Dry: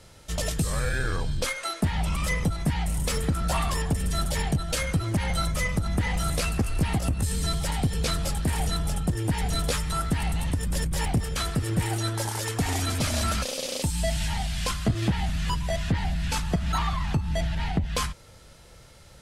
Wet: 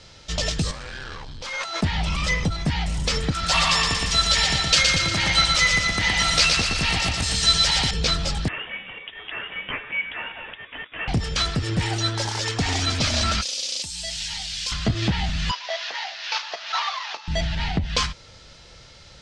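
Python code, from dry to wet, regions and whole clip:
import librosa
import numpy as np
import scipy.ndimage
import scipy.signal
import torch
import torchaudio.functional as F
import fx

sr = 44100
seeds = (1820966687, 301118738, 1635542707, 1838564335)

y = fx.chain(x, sr, fx.peak_eq(hz=910.0, db=11.0, octaves=0.79),
    fx.overload_stage(gain_db=28.0),
    fx.over_compress(threshold_db=-37.0, ratio=-1.0), at=(0.71, 1.81))
y = fx.chain(y, sr, fx.tilt_shelf(db=-6.5, hz=870.0),
    fx.echo_feedback(ms=118, feedback_pct=56, wet_db=-3.0), at=(3.31, 7.91))
y = fx.chain(y, sr, fx.highpass(hz=1100.0, slope=12),
    fx.freq_invert(carrier_hz=3600), at=(8.48, 11.08))
y = fx.chain(y, sr, fx.pre_emphasis(coefficient=0.9),
    fx.env_flatten(amount_pct=50), at=(13.41, 14.72))
y = fx.chain(y, sr, fx.cvsd(bps=32000),
    fx.highpass(hz=600.0, slope=24), at=(15.51, 17.28))
y = scipy.signal.sosfilt(scipy.signal.butter(4, 5500.0, 'lowpass', fs=sr, output='sos'), y)
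y = fx.high_shelf(y, sr, hz=2600.0, db=12.0)
y = y * 10.0 ** (1.5 / 20.0)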